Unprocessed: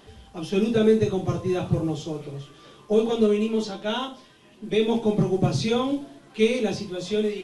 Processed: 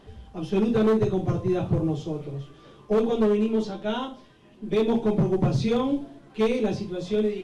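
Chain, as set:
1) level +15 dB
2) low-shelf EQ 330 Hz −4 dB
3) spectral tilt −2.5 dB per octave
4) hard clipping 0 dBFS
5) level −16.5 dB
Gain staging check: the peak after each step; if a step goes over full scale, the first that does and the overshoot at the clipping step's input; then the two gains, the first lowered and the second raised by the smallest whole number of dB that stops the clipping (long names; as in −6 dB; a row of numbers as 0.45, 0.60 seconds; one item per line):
+7.0, +6.0, +9.0, 0.0, −16.5 dBFS
step 1, 9.0 dB
step 1 +6 dB, step 5 −7.5 dB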